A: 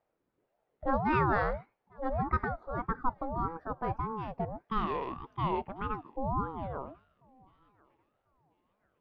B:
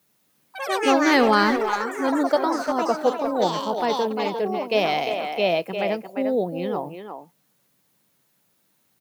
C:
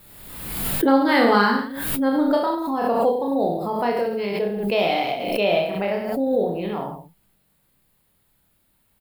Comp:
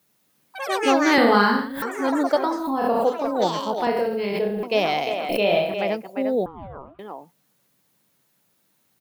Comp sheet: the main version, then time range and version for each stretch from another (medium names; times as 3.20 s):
B
1.18–1.82 s: from C
2.54–3.08 s: from C, crossfade 0.24 s
3.87–4.63 s: from C
5.29–5.74 s: from C
6.46–6.99 s: from A